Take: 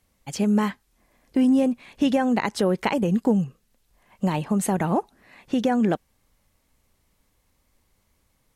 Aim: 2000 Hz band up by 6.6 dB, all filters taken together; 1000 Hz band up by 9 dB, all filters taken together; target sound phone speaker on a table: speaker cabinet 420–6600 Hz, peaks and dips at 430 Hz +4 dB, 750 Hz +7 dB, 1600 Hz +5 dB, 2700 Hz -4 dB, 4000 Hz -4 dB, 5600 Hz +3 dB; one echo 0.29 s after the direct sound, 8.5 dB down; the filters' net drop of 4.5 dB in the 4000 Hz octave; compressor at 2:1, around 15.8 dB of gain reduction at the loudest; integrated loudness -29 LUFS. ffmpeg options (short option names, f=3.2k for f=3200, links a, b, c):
-af "equalizer=f=1k:t=o:g=5,equalizer=f=2k:t=o:g=5,equalizer=f=4k:t=o:g=-6,acompressor=threshold=-46dB:ratio=2,highpass=f=420:w=0.5412,highpass=f=420:w=1.3066,equalizer=f=430:t=q:w=4:g=4,equalizer=f=750:t=q:w=4:g=7,equalizer=f=1.6k:t=q:w=4:g=5,equalizer=f=2.7k:t=q:w=4:g=-4,equalizer=f=4k:t=q:w=4:g=-4,equalizer=f=5.6k:t=q:w=4:g=3,lowpass=f=6.6k:w=0.5412,lowpass=f=6.6k:w=1.3066,aecho=1:1:290:0.376,volume=10dB"